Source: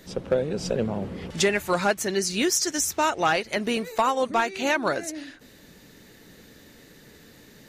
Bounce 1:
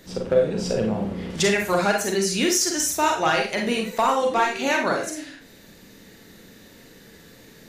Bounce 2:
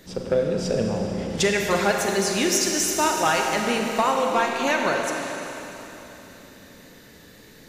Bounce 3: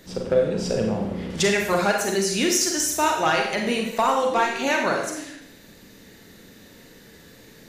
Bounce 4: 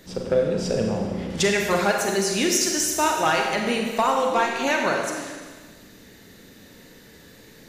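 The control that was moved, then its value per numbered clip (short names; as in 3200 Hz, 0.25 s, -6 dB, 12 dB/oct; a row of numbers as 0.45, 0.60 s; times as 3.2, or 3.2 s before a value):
Schroeder reverb, RT60: 0.35, 3.6, 0.72, 1.5 s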